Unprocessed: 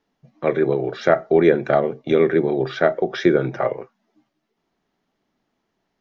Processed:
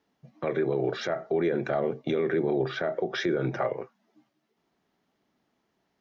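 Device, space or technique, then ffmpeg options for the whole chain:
stacked limiters: -filter_complex "[0:a]highpass=51,asettb=1/sr,asplit=3[s0][s1][s2];[s0]atrim=end=2.434[s3];[s1]atrim=start=2.43:end=2.93,asetpts=PTS-STARTPTS,afade=t=in:d=0.004:c=qsin,afade=t=out:st=0.496:d=0.004:c=qsin,highshelf=f=4300:g=-6.5[s4];[s2]atrim=start=2.926[s5];[s3][s4]acrossfade=d=0.004:c1=hsin:c2=qsin[s6];[s6][s5]acrossfade=d=0.004:c1=qsin:c2=hsin,alimiter=limit=0.398:level=0:latency=1:release=78,alimiter=limit=0.2:level=0:latency=1:release=208,alimiter=limit=0.141:level=0:latency=1:release=11,volume=0.891"

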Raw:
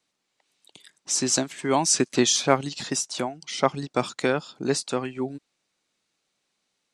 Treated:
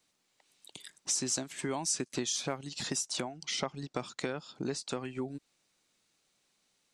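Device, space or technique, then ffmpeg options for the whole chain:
ASMR close-microphone chain: -filter_complex "[0:a]asettb=1/sr,asplit=3[s0][s1][s2];[s0]atrim=end=3.174[s3];[s1]atrim=start=3.17:end=4.92,asetpts=PTS-STARTPTS,afade=t=in:d=0.004:c=qsin,afade=t=out:st=1.746:d=0.004:c=qsin,lowpass=7400[s4];[s2]atrim=start=4.916[s5];[s3][s4]acrossfade=d=0.004:c1=hsin:c2=qsin[s6];[s6][s5]acrossfade=d=0.004:c1=qsin:c2=hsin,lowshelf=f=100:g=7,acompressor=threshold=0.0224:ratio=5,highshelf=f=7600:g=7"

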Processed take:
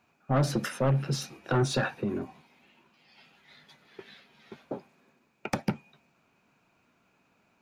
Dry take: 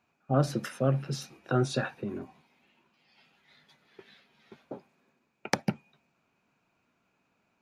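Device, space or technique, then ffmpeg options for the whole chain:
saturation between pre-emphasis and de-emphasis: -af "highshelf=f=4300:g=11.5,asoftclip=type=tanh:threshold=0.0596,highshelf=f=4300:g=-11.5,volume=1.88"

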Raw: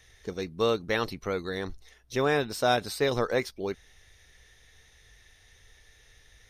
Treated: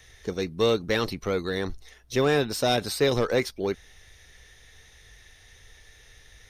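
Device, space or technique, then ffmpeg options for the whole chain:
one-band saturation: -filter_complex "[0:a]acrossover=split=500|2400[s0][s1][s2];[s1]asoftclip=type=tanh:threshold=0.0266[s3];[s0][s3][s2]amix=inputs=3:normalize=0,volume=1.78"

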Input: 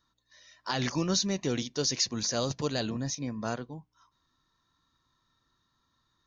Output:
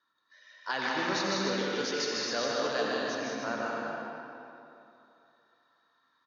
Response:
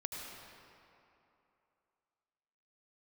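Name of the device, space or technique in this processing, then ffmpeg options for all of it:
station announcement: -filter_complex "[0:a]highpass=390,lowpass=3700,equalizer=f=1600:t=o:w=0.46:g=7,aecho=1:1:154.5|201.2|288.6:0.631|0.562|0.355[s0];[1:a]atrim=start_sample=2205[s1];[s0][s1]afir=irnorm=-1:irlink=0,volume=1.12"

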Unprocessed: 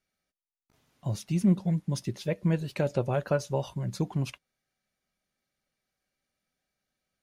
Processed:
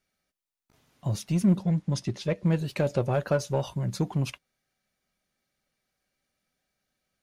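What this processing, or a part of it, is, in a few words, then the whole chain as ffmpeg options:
parallel distortion: -filter_complex "[0:a]asettb=1/sr,asplit=3[s0][s1][s2];[s0]atrim=end=1.634[s3];[s1]atrim=start=1.63:end=2.46,asetpts=PTS-STARTPTS,afade=t=in:d=0.004:c=qsin,afade=t=out:st=0.826:d=0.004:c=qsin,lowpass=7600[s4];[s2]atrim=start=2.456[s5];[s3][s4]acrossfade=d=0.004:c1=hsin:c2=qsin[s6];[s6][s5]acrossfade=d=0.004:c1=qsin:c2=hsin,asplit=2[s7][s8];[s8]asoftclip=type=hard:threshold=0.0335,volume=0.501[s9];[s7][s9]amix=inputs=2:normalize=0"

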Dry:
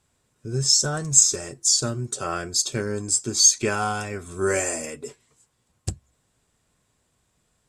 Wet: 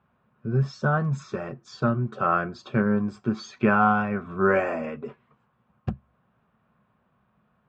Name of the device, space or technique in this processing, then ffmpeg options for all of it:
bass cabinet: -af "highpass=87,equalizer=f=90:t=q:w=4:g=-9,equalizer=f=210:t=q:w=4:g=8,equalizer=f=300:t=q:w=4:g=-10,equalizer=f=440:t=q:w=4:g=-5,equalizer=f=1200:t=q:w=4:g=5,equalizer=f=2000:t=q:w=4:g=-8,lowpass=f=2200:w=0.5412,lowpass=f=2200:w=1.3066,volume=1.78"

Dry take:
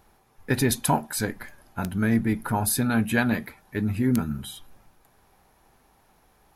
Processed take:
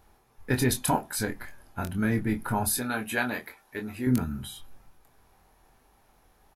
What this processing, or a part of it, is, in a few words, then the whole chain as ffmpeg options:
low shelf boost with a cut just above: -filter_complex "[0:a]asettb=1/sr,asplit=3[s0][s1][s2];[s0]atrim=end=2.784[s3];[s1]atrim=start=2.78:end=4.07,asetpts=PTS-STARTPTS,afade=t=in:d=0.004:c=qsin,afade=t=out:st=1.286:d=0.004:c=qsin,bass=f=250:g=-14,treble=f=4000:g=1[s4];[s2]atrim=start=4.066[s5];[s3][s4]acrossfade=d=0.004:c1=hsin:c2=qsin[s6];[s6][s5]acrossfade=d=0.004:c1=qsin:c2=hsin,lowshelf=f=110:g=4.5,equalizer=f=160:t=o:w=0.75:g=-3.5,asplit=2[s7][s8];[s8]adelay=24,volume=0.473[s9];[s7][s9]amix=inputs=2:normalize=0,volume=0.708"

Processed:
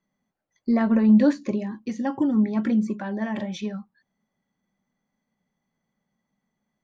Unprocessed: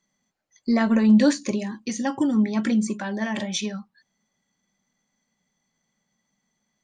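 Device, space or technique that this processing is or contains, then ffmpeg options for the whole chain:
through cloth: -af "lowpass=6300,highshelf=f=2500:g=-15"

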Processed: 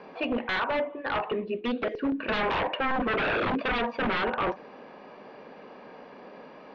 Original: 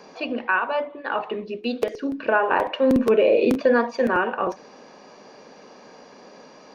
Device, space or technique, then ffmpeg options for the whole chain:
synthesiser wavefolder: -af "aeval=exprs='0.0841*(abs(mod(val(0)/0.0841+3,4)-2)-1)':c=same,lowpass=f=3200:w=0.5412,lowpass=f=3200:w=1.3066"

